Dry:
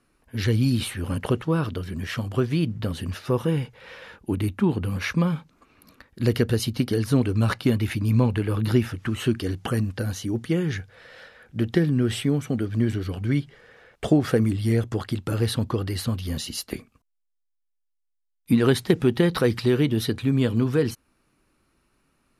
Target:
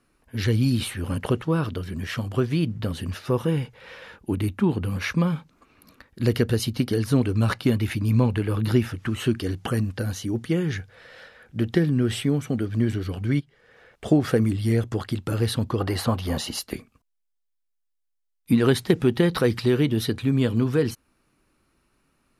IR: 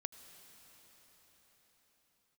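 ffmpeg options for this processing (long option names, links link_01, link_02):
-filter_complex "[0:a]asplit=3[link_01][link_02][link_03];[link_01]afade=type=out:start_time=13.39:duration=0.02[link_04];[link_02]acompressor=threshold=-46dB:ratio=2,afade=type=in:start_time=13.39:duration=0.02,afade=type=out:start_time=14.05:duration=0.02[link_05];[link_03]afade=type=in:start_time=14.05:duration=0.02[link_06];[link_04][link_05][link_06]amix=inputs=3:normalize=0,asettb=1/sr,asplit=3[link_07][link_08][link_09];[link_07]atrim=end=15.804[link_10];[link_08]atrim=start=15.8:end=16.59,asetpts=PTS-STARTPTS,afade=type=in:duration=0.004:curve=qsin,afade=type=out:start_time=0.786:duration=0.004:curve=qsin,equalizer=frequency=810:width=0.74:gain=14.5[link_11];[link_09]atrim=start=16.586[link_12];[link_10][link_11]acrossfade=duration=0.004:curve1=hsin:curve2=qsin[link_13];[link_13][link_12]acrossfade=duration=0.004:curve1=qsin:curve2=hsin"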